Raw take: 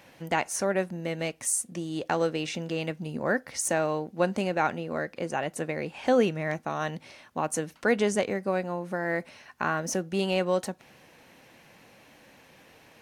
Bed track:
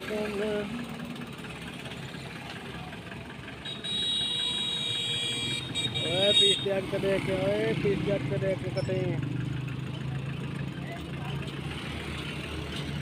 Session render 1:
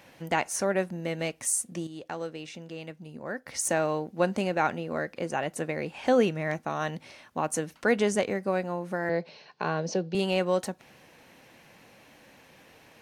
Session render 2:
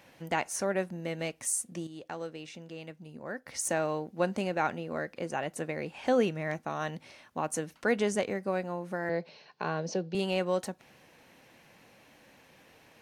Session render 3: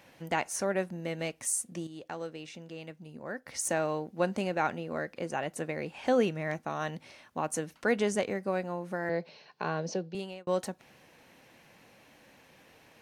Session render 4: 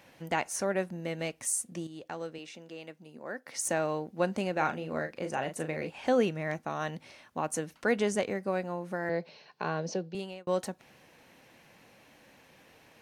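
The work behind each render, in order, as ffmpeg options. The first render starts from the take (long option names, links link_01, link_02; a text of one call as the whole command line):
ffmpeg -i in.wav -filter_complex "[0:a]asettb=1/sr,asplit=3[link_01][link_02][link_03];[link_01]atrim=end=9.094[link_04];[link_02]atrim=start=9.09:end=10.15,asetpts=PTS-STARTPTS,afade=type=in:duration=0.004:curve=qsin,afade=type=out:start_time=1.056:duration=0.004:curve=qsin,highpass=frequency=140:width=0.5412,highpass=frequency=140:width=1.3066,equalizer=frequency=160:width_type=q:width=4:gain=5,equalizer=frequency=250:width_type=q:width=4:gain=-9,equalizer=frequency=450:width_type=q:width=4:gain=8,equalizer=frequency=1300:width_type=q:width=4:gain=-8,equalizer=frequency=1900:width_type=q:width=4:gain=-7,equalizer=frequency=4400:width_type=q:width=4:gain=8,lowpass=frequency=5100:width=0.5412,lowpass=frequency=5100:width=1.3066[link_05];[link_03]atrim=start=10.146[link_06];[link_04][link_05]acrossfade=duration=0.004:curve1=hsin:curve2=qsin[link_07];[link_07][link_06]acrossfade=duration=0.004:curve1=qsin:curve2=hsin,asplit=3[link_08][link_09][link_10];[link_08]atrim=end=1.872[link_11];[link_09]atrim=start=1.868:end=3.462,asetpts=PTS-STARTPTS,volume=-9dB[link_12];[link_10]atrim=start=3.458[link_13];[link_11][link_12]acrossfade=duration=0.004:curve1=hsin:curve2=hsin[link_14];[link_14][link_13]acrossfade=duration=0.004:curve1=hsin:curve2=hsin" out.wav
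ffmpeg -i in.wav -af "volume=-3.5dB" out.wav
ffmpeg -i in.wav -filter_complex "[0:a]asplit=2[link_01][link_02];[link_01]atrim=end=10.47,asetpts=PTS-STARTPTS,afade=type=out:start_time=9.88:duration=0.59[link_03];[link_02]atrim=start=10.47,asetpts=PTS-STARTPTS,afade=type=in:duration=0.004:curve=hsin[link_04];[link_03][link_04]concat=n=2:v=0:a=1" out.wav
ffmpeg -i in.wav -filter_complex "[0:a]asettb=1/sr,asplit=3[link_01][link_02][link_03];[link_01]atrim=end=2.384[link_04];[link_02]atrim=start=2.38:end=3.58,asetpts=PTS-STARTPTS,afade=type=in:duration=0.004:curve=qsin,afade=type=out:start_time=1.196:duration=0.004:curve=qsin,highpass=230[link_05];[link_03]atrim=start=3.576[link_06];[link_04][link_05]acrossfade=duration=0.004:curve1=hsin:curve2=qsin[link_07];[link_07][link_06]acrossfade=duration=0.004:curve1=qsin:curve2=hsin,asettb=1/sr,asplit=3[link_08][link_09][link_10];[link_08]atrim=end=4.524[link_11];[link_09]atrim=start=4.52:end=5.9,asetpts=PTS-STARTPTS,afade=type=in:duration=0.004:curve=qsin,afade=type=out:start_time=1.376:duration=0.004:curve=qsin,asplit=2[link_12][link_13];[link_13]adelay=38,volume=-8dB[link_14];[link_12][link_14]amix=inputs=2:normalize=0,atrim=end_sample=60858[link_15];[link_10]atrim=start=5.896[link_16];[link_11][link_15]acrossfade=duration=0.004:curve1=hsin:curve2=qsin[link_17];[link_17][link_16]acrossfade=duration=0.004:curve1=qsin:curve2=hsin" out.wav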